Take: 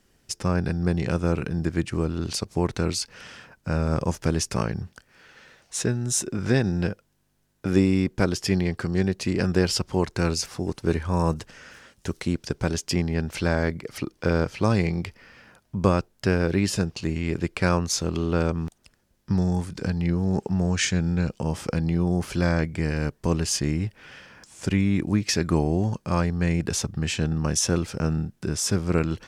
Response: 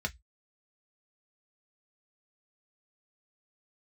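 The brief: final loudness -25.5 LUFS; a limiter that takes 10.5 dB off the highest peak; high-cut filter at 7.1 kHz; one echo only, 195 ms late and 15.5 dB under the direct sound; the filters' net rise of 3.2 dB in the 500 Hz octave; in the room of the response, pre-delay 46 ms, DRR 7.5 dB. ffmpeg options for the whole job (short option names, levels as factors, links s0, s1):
-filter_complex "[0:a]lowpass=7100,equalizer=f=500:t=o:g=4,alimiter=limit=0.211:level=0:latency=1,aecho=1:1:195:0.168,asplit=2[s0][s1];[1:a]atrim=start_sample=2205,adelay=46[s2];[s1][s2]afir=irnorm=-1:irlink=0,volume=0.266[s3];[s0][s3]amix=inputs=2:normalize=0"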